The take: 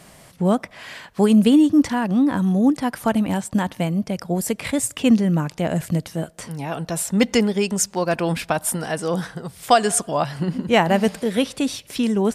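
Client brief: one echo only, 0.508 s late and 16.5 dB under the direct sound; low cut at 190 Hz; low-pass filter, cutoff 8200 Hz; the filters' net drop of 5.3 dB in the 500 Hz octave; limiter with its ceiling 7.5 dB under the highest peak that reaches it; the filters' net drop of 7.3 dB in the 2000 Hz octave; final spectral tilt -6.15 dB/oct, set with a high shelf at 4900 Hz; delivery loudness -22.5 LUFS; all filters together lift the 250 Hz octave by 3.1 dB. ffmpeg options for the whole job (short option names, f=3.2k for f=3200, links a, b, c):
-af "highpass=190,lowpass=8.2k,equalizer=f=250:t=o:g=8,equalizer=f=500:t=o:g=-9,equalizer=f=2k:t=o:g=-8.5,highshelf=f=4.9k:g=-3.5,alimiter=limit=-10dB:level=0:latency=1,aecho=1:1:508:0.15,volume=-1.5dB"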